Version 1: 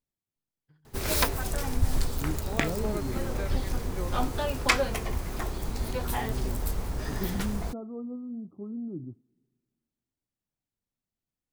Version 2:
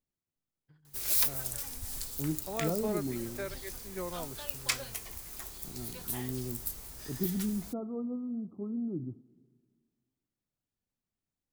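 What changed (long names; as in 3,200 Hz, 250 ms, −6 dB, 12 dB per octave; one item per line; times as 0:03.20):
second voice: send +10.0 dB
background: add first-order pre-emphasis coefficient 0.9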